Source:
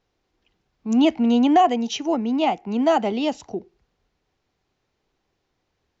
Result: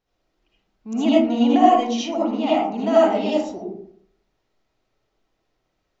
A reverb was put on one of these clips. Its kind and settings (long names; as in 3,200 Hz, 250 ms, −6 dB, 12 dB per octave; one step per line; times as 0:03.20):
comb and all-pass reverb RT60 0.63 s, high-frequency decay 0.4×, pre-delay 35 ms, DRR −7.5 dB
level −7.5 dB